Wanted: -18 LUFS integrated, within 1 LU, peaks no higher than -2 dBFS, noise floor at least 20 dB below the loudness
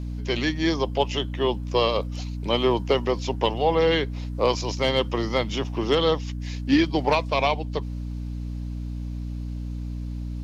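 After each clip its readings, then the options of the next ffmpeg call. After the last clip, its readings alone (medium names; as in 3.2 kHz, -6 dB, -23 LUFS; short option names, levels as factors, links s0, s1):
hum 60 Hz; highest harmonic 300 Hz; hum level -28 dBFS; loudness -25.0 LUFS; peak level -8.0 dBFS; loudness target -18.0 LUFS
-> -af "bandreject=f=60:t=h:w=4,bandreject=f=120:t=h:w=4,bandreject=f=180:t=h:w=4,bandreject=f=240:t=h:w=4,bandreject=f=300:t=h:w=4"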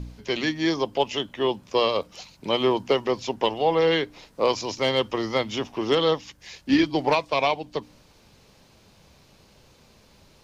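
hum not found; loudness -24.5 LUFS; peak level -9.0 dBFS; loudness target -18.0 LUFS
-> -af "volume=2.11"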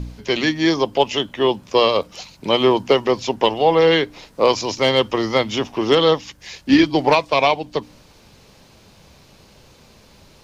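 loudness -18.0 LUFS; peak level -2.5 dBFS; noise floor -50 dBFS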